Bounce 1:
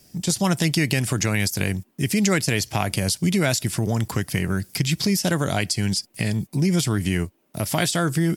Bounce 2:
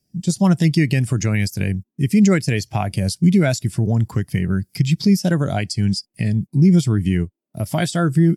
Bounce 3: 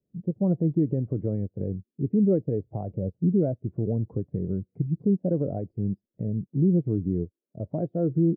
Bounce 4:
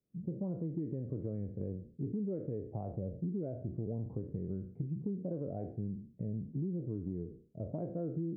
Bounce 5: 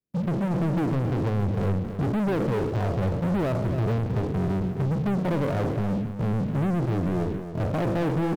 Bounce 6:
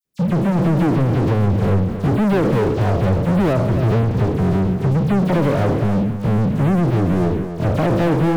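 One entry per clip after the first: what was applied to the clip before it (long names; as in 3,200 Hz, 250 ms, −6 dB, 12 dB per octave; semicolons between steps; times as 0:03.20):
every bin expanded away from the loudest bin 1.5 to 1
dynamic equaliser 290 Hz, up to +4 dB, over −31 dBFS, Q 3; transistor ladder low-pass 560 Hz, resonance 60%
peak hold with a decay on every bin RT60 0.44 s; downward compressor, threshold −27 dBFS, peak gain reduction 10 dB; level −7 dB
leveller curve on the samples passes 5; single-tap delay 273 ms −9.5 dB; level +4 dB
all-pass dispersion lows, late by 49 ms, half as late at 3,000 Hz; level +8.5 dB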